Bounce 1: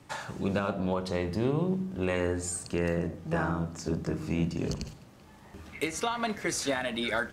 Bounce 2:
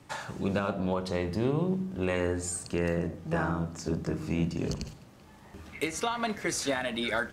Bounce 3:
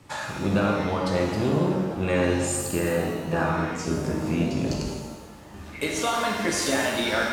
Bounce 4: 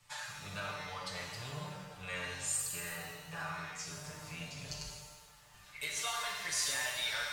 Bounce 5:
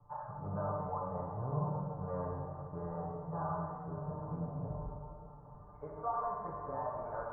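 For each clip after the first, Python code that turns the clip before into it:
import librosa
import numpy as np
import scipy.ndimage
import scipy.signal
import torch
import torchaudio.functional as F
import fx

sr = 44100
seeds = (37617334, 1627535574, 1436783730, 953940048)

y1 = x
y2 = fx.rev_shimmer(y1, sr, seeds[0], rt60_s=1.3, semitones=7, shimmer_db=-8, drr_db=-1.0)
y2 = y2 * 10.0 ** (2.5 / 20.0)
y3 = fx.tone_stack(y2, sr, knobs='10-0-10')
y3 = y3 + 0.93 * np.pad(y3, (int(6.8 * sr / 1000.0), 0))[:len(y3)]
y3 = y3 * 10.0 ** (-7.5 / 20.0)
y4 = scipy.signal.sosfilt(scipy.signal.butter(8, 1100.0, 'lowpass', fs=sr, output='sos'), y3)
y4 = y4 + 10.0 ** (-18.0 / 20.0) * np.pad(y4, (int(816 * sr / 1000.0), 0))[:len(y4)]
y4 = fx.rev_schroeder(y4, sr, rt60_s=3.1, comb_ms=27, drr_db=10.0)
y4 = y4 * 10.0 ** (8.0 / 20.0)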